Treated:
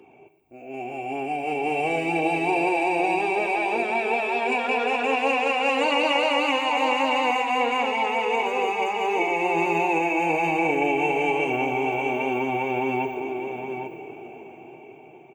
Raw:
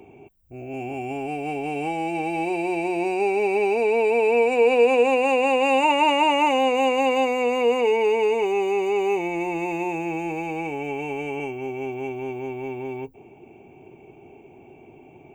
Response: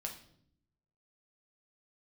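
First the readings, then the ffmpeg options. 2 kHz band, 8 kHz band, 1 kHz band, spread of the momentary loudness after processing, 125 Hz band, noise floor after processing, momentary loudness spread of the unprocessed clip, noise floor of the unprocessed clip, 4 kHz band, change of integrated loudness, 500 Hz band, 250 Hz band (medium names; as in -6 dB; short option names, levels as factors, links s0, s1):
+3.5 dB, -1.0 dB, +1.0 dB, 10 LU, -0.5 dB, -47 dBFS, 13 LU, -49 dBFS, +2.0 dB, -1.0 dB, -4.5 dB, -1.0 dB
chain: -filter_complex "[0:a]asoftclip=type=tanh:threshold=0.2,highshelf=f=3500:g=-8,dynaudnorm=f=320:g=13:m=6.68,alimiter=limit=0.224:level=0:latency=1,flanger=delay=0.6:depth=8.9:regen=-36:speed=0.31:shape=triangular,highpass=f=620:p=1,aecho=1:1:115|397|812:0.188|0.133|0.376,asplit=2[s0][s1];[1:a]atrim=start_sample=2205[s2];[s1][s2]afir=irnorm=-1:irlink=0,volume=0.841[s3];[s0][s3]amix=inputs=2:normalize=0,afftfilt=real='re*lt(hypot(re,im),0.708)':imag='im*lt(hypot(re,im),0.708)':win_size=1024:overlap=0.75,volume=1.19"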